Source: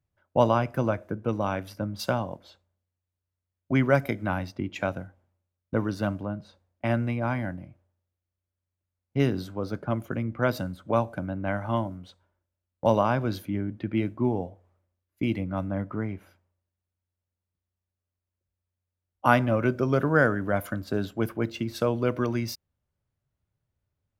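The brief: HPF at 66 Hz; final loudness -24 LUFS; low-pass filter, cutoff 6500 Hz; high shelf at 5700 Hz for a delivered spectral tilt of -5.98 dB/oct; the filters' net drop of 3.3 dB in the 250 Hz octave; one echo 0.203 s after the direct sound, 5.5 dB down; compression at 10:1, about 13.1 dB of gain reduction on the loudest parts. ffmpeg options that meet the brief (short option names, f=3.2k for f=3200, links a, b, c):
-af "highpass=66,lowpass=6.5k,equalizer=f=250:t=o:g=-4,highshelf=f=5.7k:g=-4.5,acompressor=threshold=-29dB:ratio=10,aecho=1:1:203:0.531,volume=11.5dB"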